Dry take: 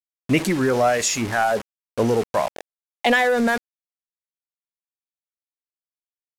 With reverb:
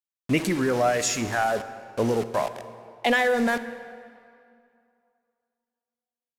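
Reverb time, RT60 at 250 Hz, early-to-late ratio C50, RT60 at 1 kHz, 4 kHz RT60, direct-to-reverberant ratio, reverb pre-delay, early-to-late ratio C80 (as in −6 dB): 2.4 s, 2.3 s, 12.0 dB, 2.5 s, 1.7 s, 11.5 dB, 31 ms, 13.0 dB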